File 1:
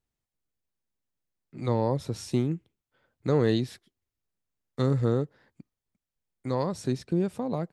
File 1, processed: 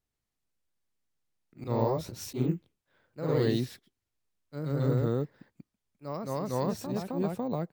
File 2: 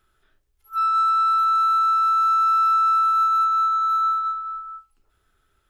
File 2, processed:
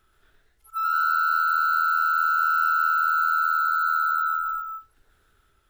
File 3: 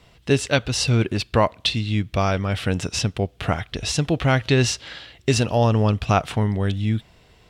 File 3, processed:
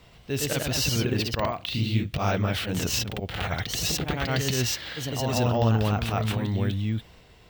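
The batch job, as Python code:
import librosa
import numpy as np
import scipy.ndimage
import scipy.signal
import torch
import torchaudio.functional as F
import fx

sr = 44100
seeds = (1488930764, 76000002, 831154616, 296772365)

p1 = fx.auto_swell(x, sr, attack_ms=120.0)
p2 = fx.over_compress(p1, sr, threshold_db=-27.0, ratio=-1.0)
p3 = p1 + (p2 * librosa.db_to_amplitude(-1.0))
p4 = fx.echo_pitch(p3, sr, ms=128, semitones=1, count=2, db_per_echo=-3.0)
p5 = np.repeat(p4[::2], 2)[:len(p4)]
y = p5 * librosa.db_to_amplitude(-8.0)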